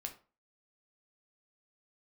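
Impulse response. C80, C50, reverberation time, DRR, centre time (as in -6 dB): 18.0 dB, 12.0 dB, 0.35 s, 3.5 dB, 10 ms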